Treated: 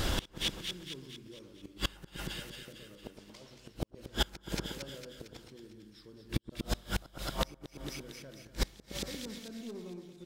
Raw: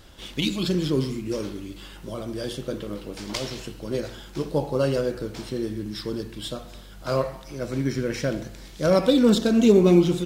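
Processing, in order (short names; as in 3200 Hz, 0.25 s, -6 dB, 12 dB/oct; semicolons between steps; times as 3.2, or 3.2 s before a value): ending faded out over 0.51 s; in parallel at +2.5 dB: compressor 5:1, threshold -30 dBFS, peak gain reduction 17 dB; on the sum: soft clip -9 dBFS, distortion -19 dB; flipped gate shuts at -20 dBFS, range -39 dB; on a send: split-band echo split 1600 Hz, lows 0.116 s, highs 0.227 s, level -8 dB; on the sum: flipped gate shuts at -27 dBFS, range -28 dB; gain +10.5 dB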